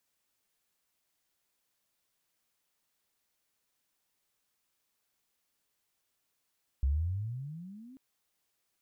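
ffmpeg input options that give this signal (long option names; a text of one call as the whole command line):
ffmpeg -f lavfi -i "aevalsrc='pow(10,(-24-25*t/1.14)/20)*sin(2*PI*64.2*1.14/(25*log(2)/12)*(exp(25*log(2)/12*t/1.14)-1))':duration=1.14:sample_rate=44100" out.wav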